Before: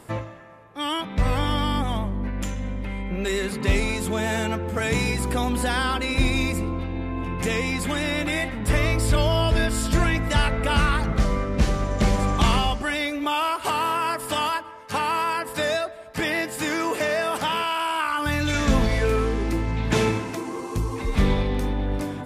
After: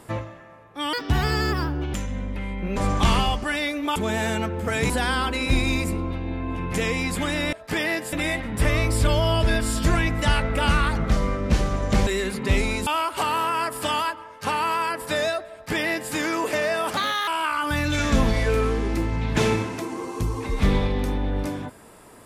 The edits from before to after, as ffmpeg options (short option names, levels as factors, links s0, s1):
-filter_complex "[0:a]asplit=12[s0][s1][s2][s3][s4][s5][s6][s7][s8][s9][s10][s11];[s0]atrim=end=0.934[s12];[s1]atrim=start=0.93:end=2.42,asetpts=PTS-STARTPTS,asetrate=65268,aresample=44100[s13];[s2]atrim=start=2.416:end=3.252[s14];[s3]atrim=start=12.148:end=13.342[s15];[s4]atrim=start=4.048:end=4.992[s16];[s5]atrim=start=5.578:end=8.212[s17];[s6]atrim=start=15.988:end=16.592[s18];[s7]atrim=start=8.208:end=12.152[s19];[s8]atrim=start=3.248:end=4.052[s20];[s9]atrim=start=13.338:end=17.444[s21];[s10]atrim=start=17.44:end=17.83,asetpts=PTS-STARTPTS,asetrate=55566,aresample=44100[s22];[s11]atrim=start=17.826[s23];[s12][s13]acrossfade=d=0.004:c1=hsin:c2=hsin[s24];[s24][s14]acrossfade=d=0.004:c1=hsin:c2=hsin[s25];[s25][s15]acrossfade=d=0.004:c1=hsin:c2=hsin[s26];[s26][s16]acrossfade=d=0.004:c1=hsin:c2=hsin[s27];[s27][s17]acrossfade=d=0.004:c1=hsin:c2=hsin[s28];[s28][s18]acrossfade=d=0.004:c1=hsin:c2=hsin[s29];[s29][s19]acrossfade=d=0.004:c1=hsin:c2=hsin[s30];[s30][s20]acrossfade=d=0.004:c1=hsin:c2=hsin[s31];[s31][s21]acrossfade=d=0.004:c1=hsin:c2=hsin[s32];[s32][s22]acrossfade=d=0.004:c1=hsin:c2=hsin[s33];[s33][s23]acrossfade=d=0.004:c1=hsin:c2=hsin"